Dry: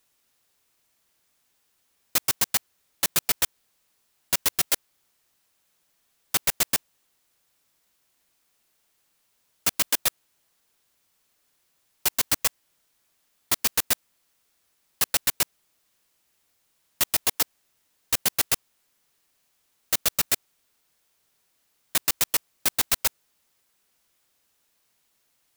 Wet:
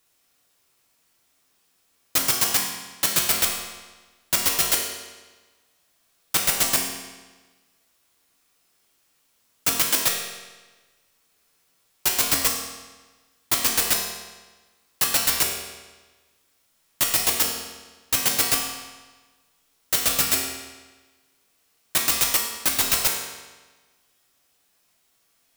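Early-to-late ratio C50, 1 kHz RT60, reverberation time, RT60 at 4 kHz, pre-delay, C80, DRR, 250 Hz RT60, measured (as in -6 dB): 3.5 dB, 1.3 s, 1.3 s, 1.2 s, 4 ms, 5.0 dB, -1.0 dB, 1.3 s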